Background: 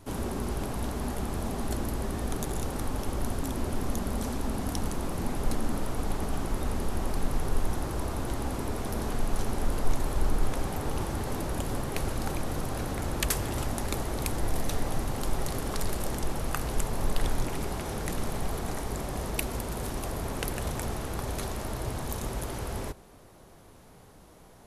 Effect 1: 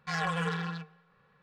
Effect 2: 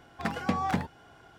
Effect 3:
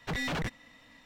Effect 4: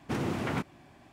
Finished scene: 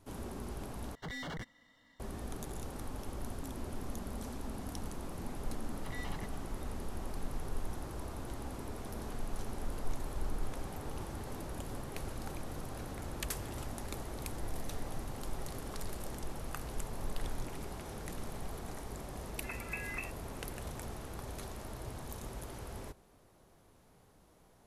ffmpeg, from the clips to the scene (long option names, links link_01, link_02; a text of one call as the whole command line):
ffmpeg -i bed.wav -i cue0.wav -i cue1.wav -i cue2.wav -filter_complex "[3:a]asplit=2[link_01][link_02];[0:a]volume=-10.5dB[link_03];[link_01]asuperstop=centerf=2500:order=12:qfactor=5[link_04];[link_02]aecho=1:1:1:0.65[link_05];[2:a]lowpass=frequency=2400:width_type=q:width=0.5098,lowpass=frequency=2400:width_type=q:width=0.6013,lowpass=frequency=2400:width_type=q:width=0.9,lowpass=frequency=2400:width_type=q:width=2.563,afreqshift=-2800[link_06];[link_03]asplit=2[link_07][link_08];[link_07]atrim=end=0.954[link_09];[link_04]atrim=end=1.05,asetpts=PTS-STARTPTS,volume=-9dB[link_10];[link_08]atrim=start=1.996[link_11];[link_05]atrim=end=1.05,asetpts=PTS-STARTPTS,volume=-15.5dB,afade=type=in:duration=0.004:curve=hsin,afade=type=out:start_time=1.046:duration=0.004:curve=hsin,adelay=254457S[link_12];[link_06]atrim=end=1.38,asetpts=PTS-STARTPTS,volume=-14dB,afade=type=in:duration=0.004:curve=hsin,afade=type=out:start_time=1.376:duration=0.004:curve=hsin,adelay=848484S[link_13];[link_09][link_10]acrossfade=duration=0.004:curve1=hsin:curve2=hsin[link_14];[link_14][link_11]acrossfade=duration=0.004:curve1=hsin:curve2=hsin[link_15];[link_15][link_12][link_13]amix=inputs=3:normalize=0" out.wav